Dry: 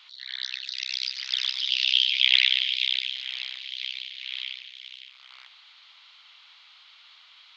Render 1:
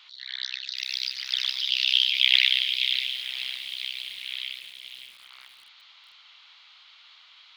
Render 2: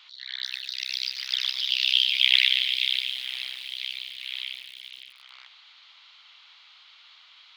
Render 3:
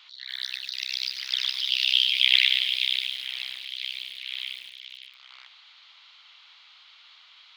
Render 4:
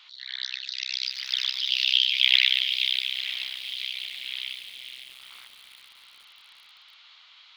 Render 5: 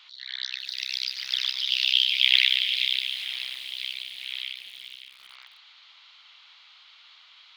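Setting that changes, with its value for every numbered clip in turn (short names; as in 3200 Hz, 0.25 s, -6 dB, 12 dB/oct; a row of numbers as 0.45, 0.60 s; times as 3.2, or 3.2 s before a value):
lo-fi delay, time: 0.577, 0.258, 0.104, 0.849, 0.393 s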